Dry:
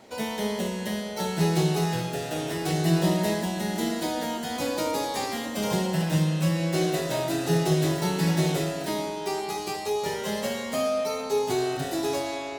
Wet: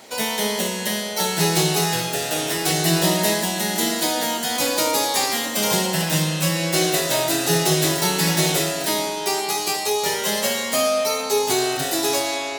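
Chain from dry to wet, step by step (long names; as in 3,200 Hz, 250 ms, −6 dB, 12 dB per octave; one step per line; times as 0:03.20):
spectral tilt +2.5 dB per octave
level +7 dB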